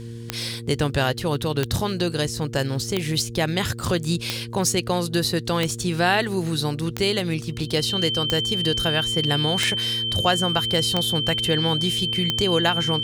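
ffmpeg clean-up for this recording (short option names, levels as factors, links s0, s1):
-af "adeclick=t=4,bandreject=f=116.3:t=h:w=4,bandreject=f=232.6:t=h:w=4,bandreject=f=348.9:t=h:w=4,bandreject=f=465.2:t=h:w=4,bandreject=f=3100:w=30"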